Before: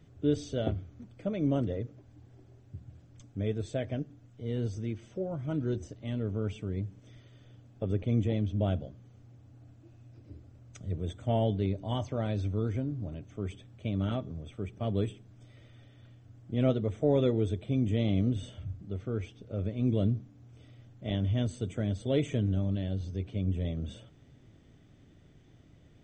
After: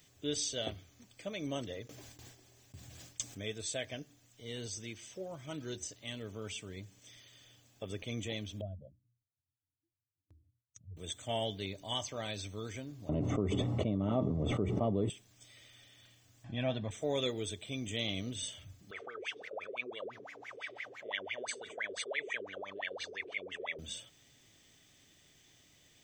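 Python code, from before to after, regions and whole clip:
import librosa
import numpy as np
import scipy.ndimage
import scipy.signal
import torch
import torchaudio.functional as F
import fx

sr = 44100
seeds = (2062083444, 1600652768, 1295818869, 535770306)

y = fx.chain(x, sr, fx.gate_hold(open_db=-45.0, close_db=-51.0, hold_ms=71.0, range_db=-21, attack_ms=1.4, release_ms=100.0),
    fx.env_flatten(amount_pct=50), at=(1.87, 3.48))
y = fx.chain(y, sr, fx.spec_expand(power=2.3),
    fx.gate_hold(open_db=-43.0, close_db=-51.0, hold_ms=71.0, range_db=-21, attack_ms=1.4, release_ms=100.0),
    fx.hum_notches(base_hz=60, count=6), at=(8.61, 10.97))
y = fx.chain(y, sr, fx.savgol(points=65),
    fx.peak_eq(hz=220.0, db=9.0, octaves=2.9),
    fx.env_flatten(amount_pct=100), at=(13.09, 15.1))
y = fx.chain(y, sr, fx.lowpass(hz=2200.0, slope=12),
    fx.comb(ms=1.2, depth=0.7),
    fx.env_flatten(amount_pct=50), at=(16.44, 16.91))
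y = fx.chain(y, sr, fx.peak_eq(hz=460.0, db=8.5, octaves=0.95),
    fx.wah_lfo(hz=5.9, low_hz=370.0, high_hz=2300.0, q=19.0),
    fx.env_flatten(amount_pct=70), at=(18.91, 23.79))
y = scipy.signal.lfilter([1.0, -0.97], [1.0], y)
y = fx.notch(y, sr, hz=1400.0, q=9.2)
y = F.gain(torch.from_numpy(y), 15.0).numpy()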